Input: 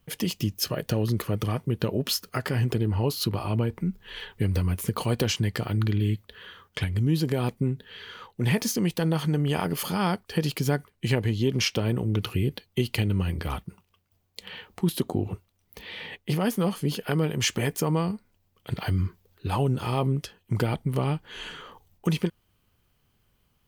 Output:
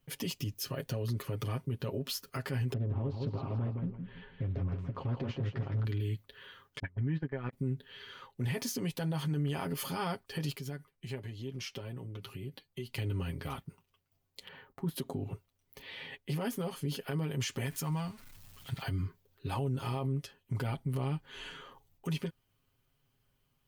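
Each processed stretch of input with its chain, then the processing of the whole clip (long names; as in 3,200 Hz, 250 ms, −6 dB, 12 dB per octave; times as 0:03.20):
0:02.73–0:05.85: head-to-tape spacing loss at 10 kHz 44 dB + repeating echo 164 ms, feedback 30%, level −6.5 dB + highs frequency-modulated by the lows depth 0.73 ms
0:06.79–0:07.53: noise gate −25 dBFS, range −23 dB + envelope-controlled low-pass 250–1,800 Hz up, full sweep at −28 dBFS
0:10.56–0:12.94: downward compressor 2 to 1, threshold −30 dBFS + flanger 1.7 Hz, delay 4.8 ms, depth 1.7 ms, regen +62%
0:14.48–0:14.96: noise gate −58 dBFS, range −10 dB + flat-topped bell 5,300 Hz −11 dB 2.7 octaves
0:17.66–0:18.82: converter with a step at zero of −40.5 dBFS + parametric band 410 Hz −11.5 dB 1.6 octaves
whole clip: comb filter 7.4 ms, depth 71%; brickwall limiter −17.5 dBFS; level −8.5 dB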